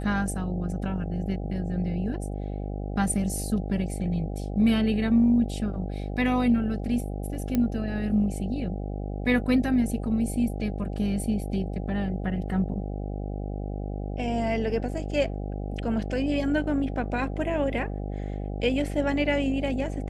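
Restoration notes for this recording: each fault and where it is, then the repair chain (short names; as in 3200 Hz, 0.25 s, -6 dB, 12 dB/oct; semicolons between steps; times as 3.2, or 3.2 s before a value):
buzz 50 Hz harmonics 16 -32 dBFS
7.55 pop -13 dBFS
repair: de-click; de-hum 50 Hz, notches 16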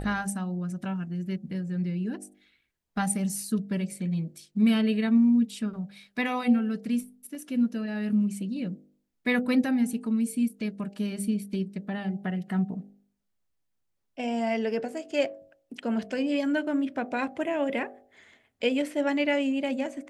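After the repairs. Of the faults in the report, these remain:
none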